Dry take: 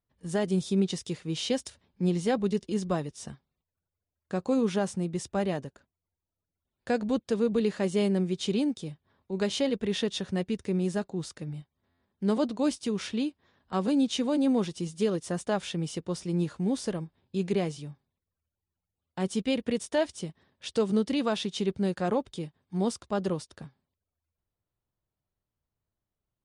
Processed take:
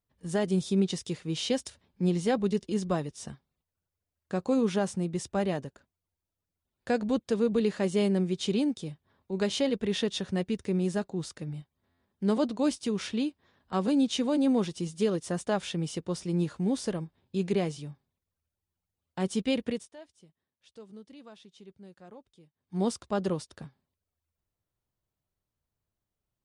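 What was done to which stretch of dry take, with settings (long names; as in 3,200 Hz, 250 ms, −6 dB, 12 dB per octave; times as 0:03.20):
0:19.64–0:22.82: duck −22 dB, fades 0.26 s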